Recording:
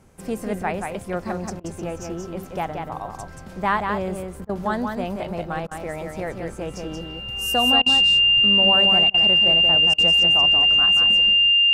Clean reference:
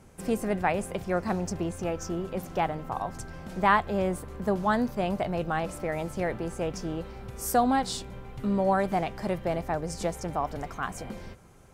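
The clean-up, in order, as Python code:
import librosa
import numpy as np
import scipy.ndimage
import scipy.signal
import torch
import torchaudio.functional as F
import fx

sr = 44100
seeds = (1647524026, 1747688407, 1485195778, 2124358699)

y = fx.notch(x, sr, hz=2800.0, q=30.0)
y = fx.fix_interpolate(y, sr, at_s=(1.6, 4.45, 5.67, 7.82, 9.1, 9.94), length_ms=41.0)
y = fx.fix_echo_inverse(y, sr, delay_ms=180, level_db=-5.0)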